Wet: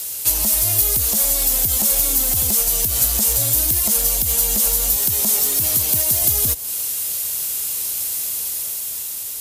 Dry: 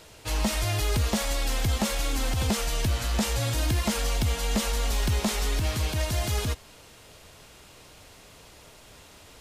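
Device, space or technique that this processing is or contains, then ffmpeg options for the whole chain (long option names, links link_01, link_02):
FM broadcast chain: -filter_complex "[0:a]highpass=frequency=53:poles=1,dynaudnorm=framelen=180:gausssize=11:maxgain=4dB,acrossover=split=930|6200[link_01][link_02][link_03];[link_01]acompressor=threshold=-25dB:ratio=4[link_04];[link_02]acompressor=threshold=-44dB:ratio=4[link_05];[link_03]acompressor=threshold=-48dB:ratio=4[link_06];[link_04][link_05][link_06]amix=inputs=3:normalize=0,aemphasis=mode=production:type=75fm,alimiter=limit=-19.5dB:level=0:latency=1:release=115,asoftclip=type=hard:threshold=-22.5dB,lowpass=frequency=15000:width=0.5412,lowpass=frequency=15000:width=1.3066,aemphasis=mode=production:type=75fm,asettb=1/sr,asplit=3[link_07][link_08][link_09];[link_07]atrim=end=4.964[link_10];[link_08]atrim=start=4.96:end=6.22,asetpts=PTS-STARTPTS,afade=type=in:duration=0.004:curve=qsin,afade=type=out:start_time=1.256:duration=0.004:curve=qsin,highpass=frequency=83:width=0.5412,highpass=frequency=83:width=1.3066[link_11];[link_09]atrim=start=6.216[link_12];[link_10][link_11]acrossfade=duration=0.004:curve1=hsin:curve2=qsin[link_13];[link_13][link_12]acrossfade=duration=0.004:curve1=qsin:curve2=hsin,volume=3dB"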